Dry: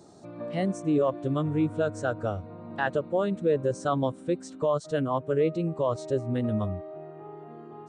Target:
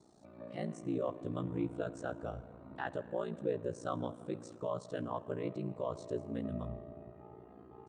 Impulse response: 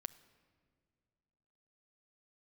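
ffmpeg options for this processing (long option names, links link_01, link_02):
-filter_complex "[1:a]atrim=start_sample=2205,asetrate=24255,aresample=44100[link_01];[0:a][link_01]afir=irnorm=-1:irlink=0,flanger=delay=0.9:depth=6:regen=-79:speed=0.36:shape=sinusoidal,aeval=exprs='val(0)*sin(2*PI*29*n/s)':channel_layout=same,volume=-3.5dB"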